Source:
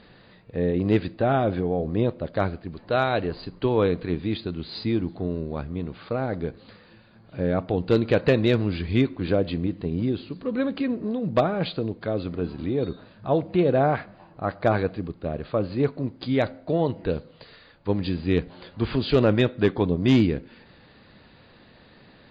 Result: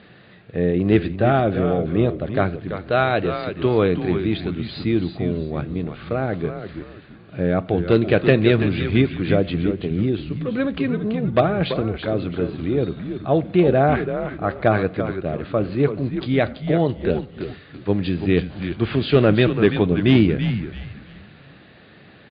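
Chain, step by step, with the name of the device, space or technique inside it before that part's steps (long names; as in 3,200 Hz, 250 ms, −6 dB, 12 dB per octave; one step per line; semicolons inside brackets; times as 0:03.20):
frequency-shifting delay pedal into a guitar cabinet (echo with shifted repeats 333 ms, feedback 33%, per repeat −100 Hz, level −8 dB; loudspeaker in its box 93–3,600 Hz, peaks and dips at 250 Hz −4 dB, 510 Hz −4 dB, 950 Hz −8 dB)
level +6 dB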